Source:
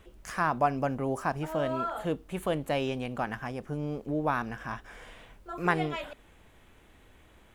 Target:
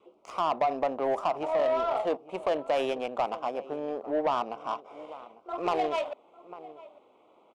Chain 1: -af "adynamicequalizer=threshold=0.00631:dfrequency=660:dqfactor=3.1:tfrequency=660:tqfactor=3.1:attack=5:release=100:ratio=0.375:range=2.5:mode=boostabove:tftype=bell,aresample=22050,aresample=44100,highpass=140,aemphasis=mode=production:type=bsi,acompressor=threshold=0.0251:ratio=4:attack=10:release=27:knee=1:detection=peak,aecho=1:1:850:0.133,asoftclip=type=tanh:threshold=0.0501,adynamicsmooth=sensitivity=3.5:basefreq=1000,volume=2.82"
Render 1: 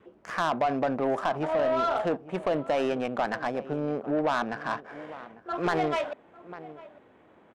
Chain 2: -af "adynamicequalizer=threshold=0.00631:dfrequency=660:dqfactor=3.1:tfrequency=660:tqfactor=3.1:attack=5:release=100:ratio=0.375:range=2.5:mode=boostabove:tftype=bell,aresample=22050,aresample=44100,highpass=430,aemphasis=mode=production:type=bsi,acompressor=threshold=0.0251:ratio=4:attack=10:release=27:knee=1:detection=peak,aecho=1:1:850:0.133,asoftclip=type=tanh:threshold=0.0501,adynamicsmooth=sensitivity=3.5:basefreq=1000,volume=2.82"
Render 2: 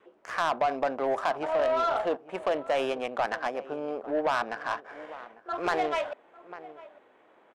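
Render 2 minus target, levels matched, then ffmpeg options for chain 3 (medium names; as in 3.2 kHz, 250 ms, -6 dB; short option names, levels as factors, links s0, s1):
2 kHz band +7.5 dB
-af "adynamicequalizer=threshold=0.00631:dfrequency=660:dqfactor=3.1:tfrequency=660:tqfactor=3.1:attack=5:release=100:ratio=0.375:range=2.5:mode=boostabove:tftype=bell,aresample=22050,aresample=44100,highpass=430,aemphasis=mode=production:type=bsi,acompressor=threshold=0.0251:ratio=4:attack=10:release=27:knee=1:detection=peak,asuperstop=centerf=1700:order=4:qfactor=1.6,aecho=1:1:850:0.133,asoftclip=type=tanh:threshold=0.0501,adynamicsmooth=sensitivity=3.5:basefreq=1000,volume=2.82"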